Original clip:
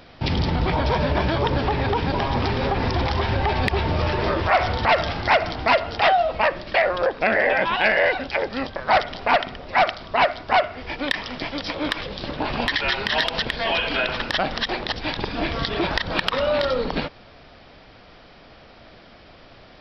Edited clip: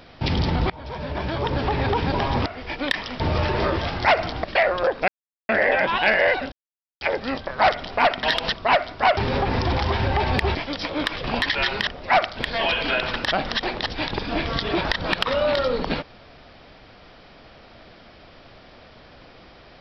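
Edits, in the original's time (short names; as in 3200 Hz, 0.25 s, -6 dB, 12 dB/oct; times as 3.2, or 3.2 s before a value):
0.7–1.82 fade in, from -23.5 dB
2.46–3.84 swap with 10.66–11.4
4.45–5.04 cut
5.67–6.63 cut
7.27 insert silence 0.41 s
8.3 insert silence 0.49 s
9.52–10.02 swap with 13.13–13.43
12.09–12.5 cut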